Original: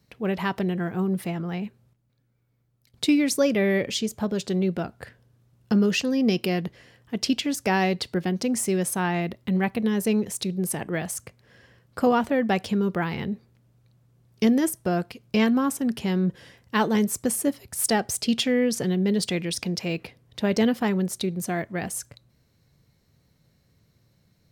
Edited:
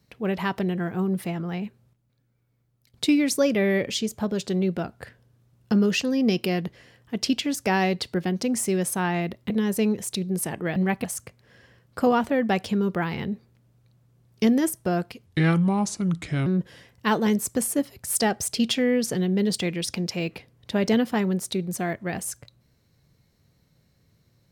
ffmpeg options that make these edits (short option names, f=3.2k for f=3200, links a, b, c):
-filter_complex "[0:a]asplit=6[a][b][c][d][e][f];[a]atrim=end=9.502[g];[b]atrim=start=9.778:end=11.042[h];[c]atrim=start=9.498:end=9.782[i];[d]atrim=start=11.038:end=15.264[j];[e]atrim=start=15.26:end=16.15,asetpts=PTS-STARTPTS,asetrate=32634,aresample=44100,atrim=end_sample=53039,asetpts=PTS-STARTPTS[k];[f]atrim=start=16.146[l];[g][h]acrossfade=d=0.004:c1=hsin:c2=hsin[m];[m][i]acrossfade=d=0.004:c1=hsin:c2=hsin[n];[n][j]acrossfade=d=0.004:c1=hsin:c2=hsin[o];[o][k]acrossfade=d=0.004:c1=hsin:c2=hsin[p];[p][l]acrossfade=d=0.004:c1=hsin:c2=hsin"